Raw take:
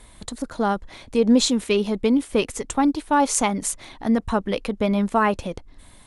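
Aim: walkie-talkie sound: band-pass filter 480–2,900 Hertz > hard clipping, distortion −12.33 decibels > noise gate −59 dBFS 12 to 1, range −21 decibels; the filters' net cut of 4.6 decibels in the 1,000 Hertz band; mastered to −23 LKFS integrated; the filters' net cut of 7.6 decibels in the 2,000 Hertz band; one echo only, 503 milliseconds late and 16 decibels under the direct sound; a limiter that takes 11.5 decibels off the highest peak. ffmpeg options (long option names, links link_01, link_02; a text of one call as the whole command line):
ffmpeg -i in.wav -af "equalizer=frequency=1000:width_type=o:gain=-3.5,equalizer=frequency=2000:width_type=o:gain=-8,alimiter=limit=-16.5dB:level=0:latency=1,highpass=480,lowpass=2900,aecho=1:1:503:0.158,asoftclip=type=hard:threshold=-26dB,agate=range=-21dB:threshold=-59dB:ratio=12,volume=12dB" out.wav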